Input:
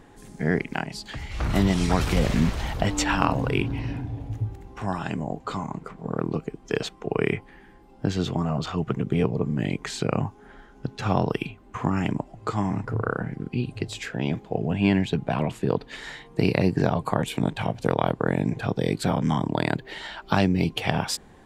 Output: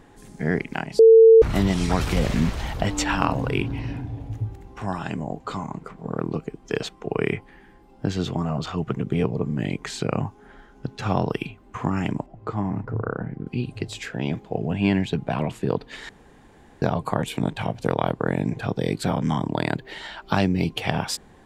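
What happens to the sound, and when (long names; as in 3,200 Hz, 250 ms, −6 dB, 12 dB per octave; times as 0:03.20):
0:00.99–0:01.42: beep over 450 Hz −7 dBFS
0:12.26–0:13.47: low-pass filter 1,100 Hz 6 dB per octave
0:16.09–0:16.82: fill with room tone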